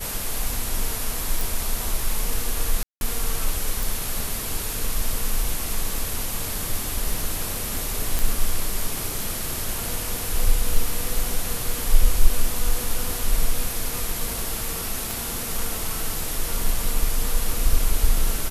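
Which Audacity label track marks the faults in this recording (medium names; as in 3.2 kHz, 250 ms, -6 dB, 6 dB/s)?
1.410000	1.410000	pop
2.830000	3.010000	dropout 181 ms
3.830000	3.830000	pop
8.190000	8.190000	pop
15.110000	15.110000	pop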